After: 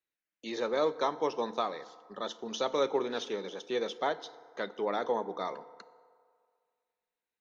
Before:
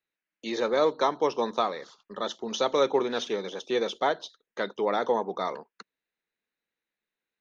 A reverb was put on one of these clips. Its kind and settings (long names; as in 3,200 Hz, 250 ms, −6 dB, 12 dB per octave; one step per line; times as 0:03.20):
feedback delay network reverb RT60 2 s, low-frequency decay 0.7×, high-frequency decay 0.5×, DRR 15 dB
level −5.5 dB